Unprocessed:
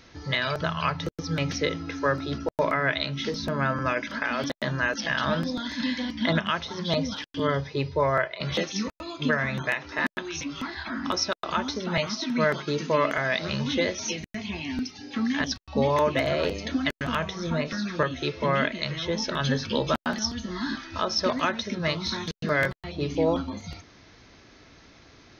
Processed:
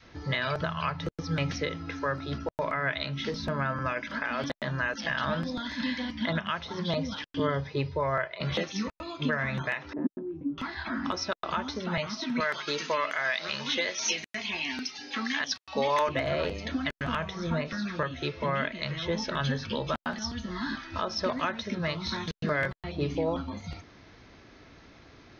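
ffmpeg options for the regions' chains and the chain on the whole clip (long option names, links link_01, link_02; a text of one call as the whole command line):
ffmpeg -i in.wav -filter_complex "[0:a]asettb=1/sr,asplit=3[link_01][link_02][link_03];[link_01]atrim=end=9.934[link_04];[link_02]atrim=start=9.93:end=10.58,asetpts=PTS-STARTPTS,afade=type=in:duration=0.004:curve=qsin,afade=type=out:start_time=0.646:duration=0.004:curve=qsin,lowpass=frequency=310:width_type=q:width=2.5,lowshelf=frequency=110:gain=-12[link_05];[link_03]atrim=start=10.576[link_06];[link_04][link_05]acrossfade=duration=0.004:curve1=hsin:curve2=qsin[link_07];[link_07][link_06]acrossfade=duration=0.004:curve1=qsin:curve2=hsin,asettb=1/sr,asplit=3[link_08][link_09][link_10];[link_08]atrim=end=12.404[link_11];[link_09]atrim=start=12.4:end=16.09,asetpts=PTS-STARTPTS,afade=type=in:duration=0.004:curve=qsin,afade=type=out:start_time=3.686:duration=0.004:curve=qsin,highpass=frequency=1400:poles=1,highshelf=frequency=6200:gain=5.5,acontrast=80[link_12];[link_10]atrim=start=16.086[link_13];[link_11][link_12]acrossfade=duration=0.004:curve1=hsin:curve2=qsin[link_14];[link_14][link_13]acrossfade=duration=0.004:curve1=qsin:curve2=hsin,aemphasis=mode=reproduction:type=50fm,alimiter=limit=-17dB:level=0:latency=1:release=234,adynamicequalizer=threshold=0.01:dfrequency=330:dqfactor=0.83:tfrequency=330:tqfactor=0.83:attack=5:release=100:ratio=0.375:range=3:mode=cutabove:tftype=bell" out.wav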